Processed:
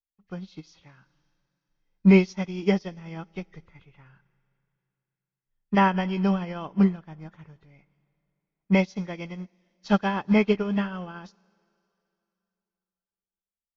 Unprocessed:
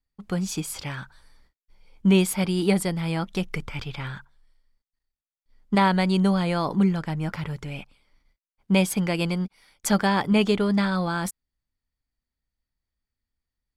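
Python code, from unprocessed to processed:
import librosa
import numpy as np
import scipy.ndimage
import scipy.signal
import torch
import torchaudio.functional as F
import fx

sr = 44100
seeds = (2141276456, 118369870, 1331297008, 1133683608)

y = fx.freq_compress(x, sr, knee_hz=1600.0, ratio=1.5)
y = fx.rev_schroeder(y, sr, rt60_s=3.1, comb_ms=38, drr_db=17.0)
y = fx.upward_expand(y, sr, threshold_db=-32.0, expansion=2.5)
y = F.gain(torch.from_numpy(y), 4.0).numpy()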